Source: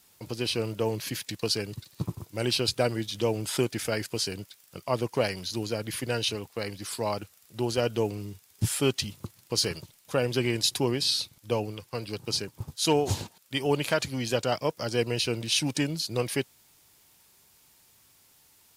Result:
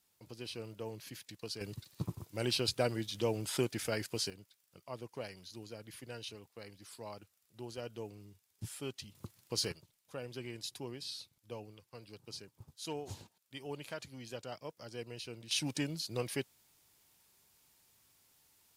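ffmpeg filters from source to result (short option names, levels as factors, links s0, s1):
-af "asetnsamples=n=441:p=0,asendcmd='1.61 volume volume -6.5dB;4.3 volume volume -17dB;9.15 volume volume -8.5dB;9.72 volume volume -17.5dB;15.51 volume volume -8.5dB',volume=0.178"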